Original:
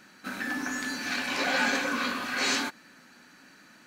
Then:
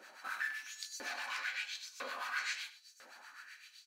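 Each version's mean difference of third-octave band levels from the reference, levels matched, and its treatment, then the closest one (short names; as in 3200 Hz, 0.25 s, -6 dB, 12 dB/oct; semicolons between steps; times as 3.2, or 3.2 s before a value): 11.5 dB: compressor 6:1, threshold -38 dBFS, peak gain reduction 15 dB; LFO high-pass saw up 1 Hz 470–6900 Hz; harmonic tremolo 7.8 Hz, depth 70%, crossover 1000 Hz; echo 97 ms -15 dB; gain +1 dB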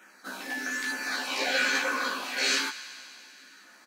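5.0 dB: HPF 420 Hz 12 dB/oct; LFO notch saw down 1.1 Hz 540–4600 Hz; doubler 15 ms -2.5 dB; thin delay 95 ms, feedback 79%, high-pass 1500 Hz, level -15.5 dB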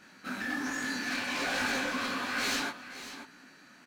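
3.5 dB: high shelf 8300 Hz -5 dB; overloaded stage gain 28.5 dB; echo 0.537 s -12 dB; detuned doubles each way 42 cents; gain +3 dB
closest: third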